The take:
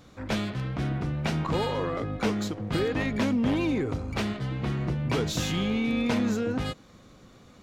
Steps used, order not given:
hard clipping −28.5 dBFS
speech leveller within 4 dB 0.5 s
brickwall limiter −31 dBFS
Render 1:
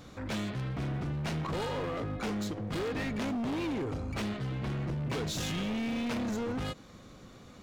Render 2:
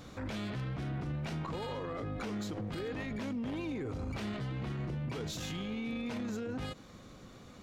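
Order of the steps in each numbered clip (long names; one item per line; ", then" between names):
hard clipping, then speech leveller, then brickwall limiter
speech leveller, then brickwall limiter, then hard clipping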